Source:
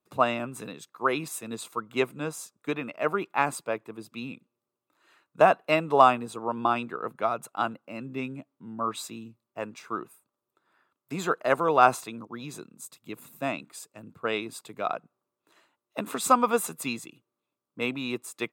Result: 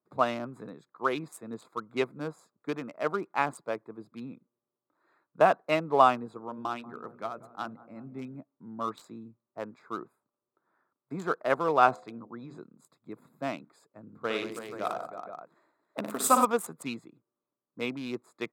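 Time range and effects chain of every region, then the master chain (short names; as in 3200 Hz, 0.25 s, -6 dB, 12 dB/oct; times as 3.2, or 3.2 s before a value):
6.37–8.35 bell 710 Hz -6.5 dB 2.5 oct + notches 60/120/180/240/300/360/420/480/540/600 Hz + darkening echo 0.189 s, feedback 72%, low-pass 1200 Hz, level -16.5 dB
11.86–12.57 LPF 7100 Hz + de-hum 73.46 Hz, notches 10
14.03–16.45 high shelf 8400 Hz +9.5 dB + tapped delay 58/96/181/325/342/479 ms -6.5/-8.5/-11.5/-9/-17.5/-10.5 dB
whole clip: Wiener smoothing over 15 samples; bell 67 Hz -13.5 dB 0.58 oct; notch 2700 Hz, Q 21; gain -2.5 dB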